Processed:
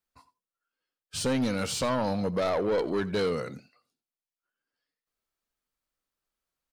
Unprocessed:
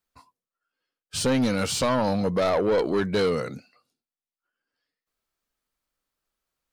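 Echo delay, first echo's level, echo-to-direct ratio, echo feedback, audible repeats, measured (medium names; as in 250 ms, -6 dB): 89 ms, -19.5 dB, -19.5 dB, no regular repeats, 1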